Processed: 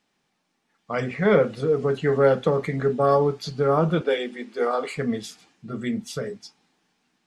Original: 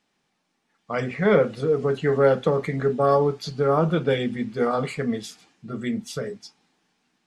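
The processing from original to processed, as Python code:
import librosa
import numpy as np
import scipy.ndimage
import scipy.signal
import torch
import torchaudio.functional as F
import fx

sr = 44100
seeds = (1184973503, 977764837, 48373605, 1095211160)

y = fx.highpass(x, sr, hz=310.0, slope=24, at=(4.01, 4.96))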